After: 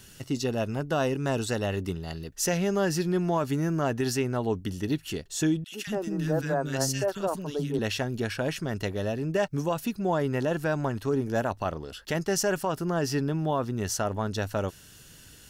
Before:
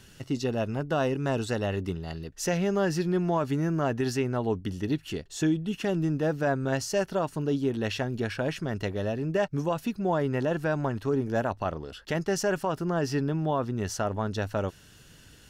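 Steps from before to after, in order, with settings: high shelf 6300 Hz +10.5 dB; 5.64–7.79 three bands offset in time highs, mids, lows 80/230 ms, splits 300/1600 Hz

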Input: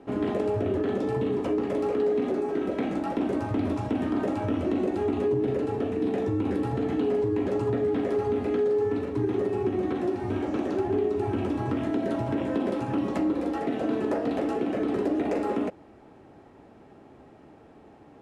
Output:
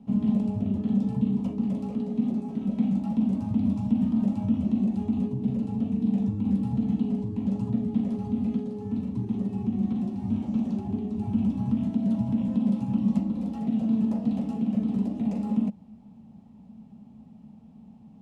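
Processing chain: EQ curve 120 Hz 0 dB, 220 Hz +15 dB, 320 Hz -19 dB, 910 Hz -9 dB, 1600 Hz -23 dB, 2800 Hz -9 dB, 6400 Hz -7 dB

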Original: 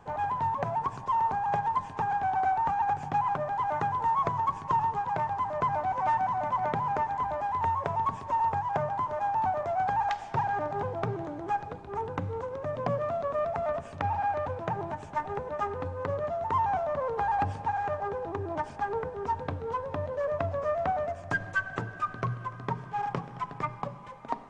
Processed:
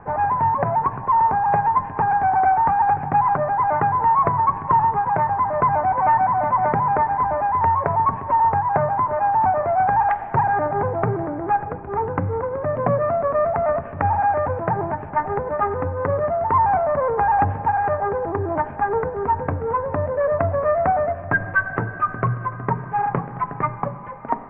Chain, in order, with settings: in parallel at -11 dB: soft clip -28 dBFS, distortion -12 dB; on the sum: steep low-pass 2100 Hz 36 dB/oct; gain +8.5 dB

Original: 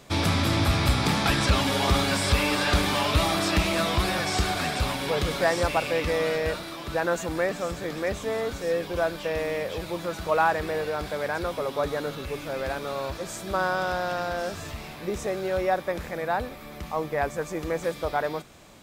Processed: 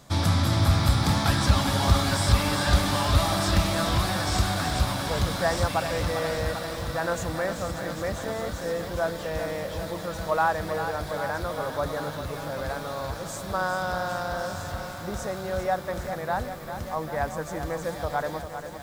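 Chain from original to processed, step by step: fifteen-band EQ 100 Hz +5 dB, 400 Hz -8 dB, 2500 Hz -9 dB; lo-fi delay 0.397 s, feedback 80%, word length 8-bit, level -9 dB

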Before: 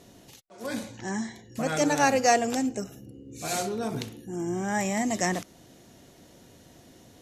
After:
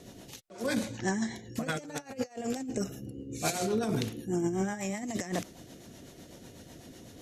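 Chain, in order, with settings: negative-ratio compressor -31 dBFS, ratio -0.5; rotary speaker horn 8 Hz; gain +1 dB

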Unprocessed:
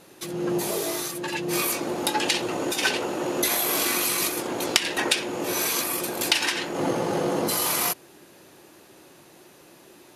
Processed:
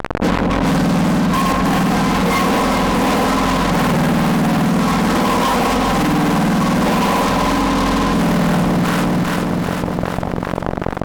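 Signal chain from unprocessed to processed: spectrum mirrored in octaves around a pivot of 1400 Hz; Chebyshev low-pass 1600 Hz, order 2; low-pass opened by the level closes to 500 Hz, open at -17.5 dBFS; bell 1100 Hz +12 dB 0.57 oct; comb 3.5 ms, depth 97%; hum 50 Hz, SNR 22 dB; fuzz box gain 39 dB, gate -36 dBFS; echo with dull and thin repeats by turns 0.181 s, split 1000 Hz, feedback 63%, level -3.5 dB; speed mistake 48 kHz file played as 44.1 kHz; maximiser +15 dB; fast leveller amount 70%; gain -10.5 dB

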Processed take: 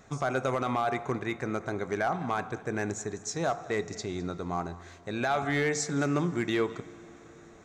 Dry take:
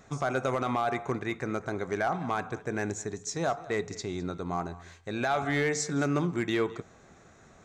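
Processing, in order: plate-style reverb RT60 4.9 s, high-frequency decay 0.75×, DRR 18.5 dB

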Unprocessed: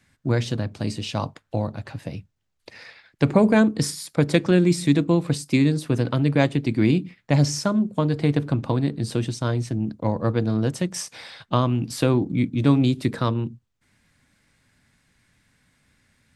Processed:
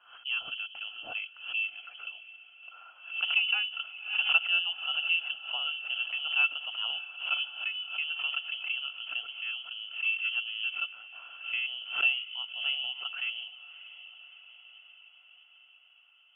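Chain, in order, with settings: vocal tract filter e; inverted band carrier 3200 Hz; diffused feedback echo 0.623 s, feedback 64%, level -15.5 dB; backwards sustainer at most 110 dB/s; gain +1 dB

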